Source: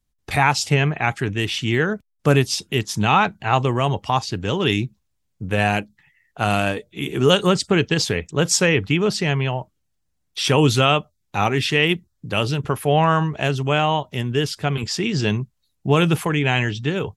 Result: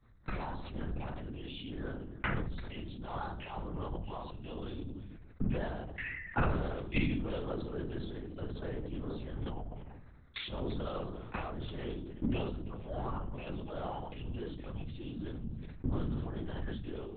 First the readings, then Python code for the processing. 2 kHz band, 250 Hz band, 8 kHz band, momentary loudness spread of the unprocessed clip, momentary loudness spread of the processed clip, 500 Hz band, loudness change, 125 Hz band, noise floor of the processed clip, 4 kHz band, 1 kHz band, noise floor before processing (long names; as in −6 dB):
−21.5 dB, −16.0 dB, below −40 dB, 8 LU, 9 LU, −20.0 dB, −19.5 dB, −18.0 dB, −51 dBFS, −25.0 dB, −21.5 dB, −72 dBFS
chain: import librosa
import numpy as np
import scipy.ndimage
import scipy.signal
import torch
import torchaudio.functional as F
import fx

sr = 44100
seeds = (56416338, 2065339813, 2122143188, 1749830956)

y = scipy.signal.sosfilt(scipy.signal.butter(4, 56.0, 'highpass', fs=sr, output='sos'), x)
y = 10.0 ** (-14.5 / 20.0) * np.tanh(y / 10.0 ** (-14.5 / 20.0))
y = fx.env_phaser(y, sr, low_hz=500.0, high_hz=2400.0, full_db=-19.5)
y = fx.gate_flip(y, sr, shuts_db=-32.0, range_db=-36)
y = y + 10.0 ** (-21.5 / 20.0) * np.pad(y, (int(337 * sr / 1000.0), 0))[:len(y)]
y = fx.room_shoebox(y, sr, seeds[0], volume_m3=750.0, walls='furnished', distance_m=2.4)
y = fx.lpc_vocoder(y, sr, seeds[1], excitation='whisper', order=8)
y = fx.sustainer(y, sr, db_per_s=32.0)
y = F.gain(torch.from_numpy(y), 14.5).numpy()